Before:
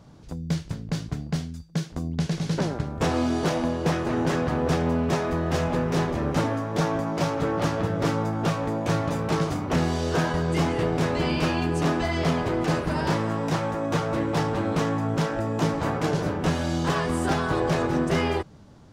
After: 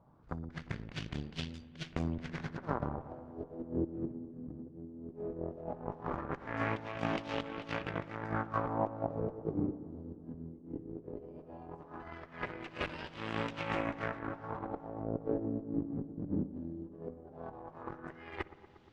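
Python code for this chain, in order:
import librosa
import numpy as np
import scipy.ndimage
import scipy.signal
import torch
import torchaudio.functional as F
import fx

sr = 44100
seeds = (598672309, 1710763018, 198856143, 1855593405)

y = librosa.effects.preemphasis(x, coef=0.8, zi=[0.0])
y = fx.over_compress(y, sr, threshold_db=-42.0, ratio=-0.5)
y = fx.cheby_harmonics(y, sr, harmonics=(7, 8), levels_db=(-19, -30), full_scale_db=-24.0)
y = fx.filter_lfo_lowpass(y, sr, shape='sine', hz=0.17, low_hz=260.0, high_hz=3000.0, q=2.3)
y = fx.echo_wet_lowpass(y, sr, ms=118, feedback_pct=72, hz=1200.0, wet_db=-15)
y = fx.rev_spring(y, sr, rt60_s=1.6, pass_ms=(57,), chirp_ms=50, drr_db=19.5)
y = y * 10.0 ** (6.5 / 20.0)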